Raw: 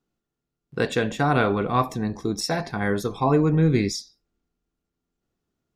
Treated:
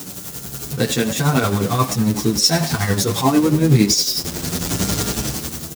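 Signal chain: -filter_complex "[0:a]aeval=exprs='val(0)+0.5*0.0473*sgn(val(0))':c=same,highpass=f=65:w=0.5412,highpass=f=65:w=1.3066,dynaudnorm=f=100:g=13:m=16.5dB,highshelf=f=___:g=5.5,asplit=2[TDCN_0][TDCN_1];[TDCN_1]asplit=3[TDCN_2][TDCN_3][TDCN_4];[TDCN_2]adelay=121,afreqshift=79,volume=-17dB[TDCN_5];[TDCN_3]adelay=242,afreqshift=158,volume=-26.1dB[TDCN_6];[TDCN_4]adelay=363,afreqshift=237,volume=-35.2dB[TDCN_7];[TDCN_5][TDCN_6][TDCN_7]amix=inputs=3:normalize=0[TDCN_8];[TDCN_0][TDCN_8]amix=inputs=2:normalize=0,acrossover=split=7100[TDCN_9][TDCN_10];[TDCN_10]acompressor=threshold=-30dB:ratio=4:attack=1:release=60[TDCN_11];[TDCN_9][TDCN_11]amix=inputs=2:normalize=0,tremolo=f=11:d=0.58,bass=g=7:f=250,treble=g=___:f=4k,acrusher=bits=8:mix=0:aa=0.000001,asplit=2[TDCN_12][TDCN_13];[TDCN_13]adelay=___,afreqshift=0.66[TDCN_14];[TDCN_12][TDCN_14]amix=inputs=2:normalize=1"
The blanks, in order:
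6.7k, 11, 8.3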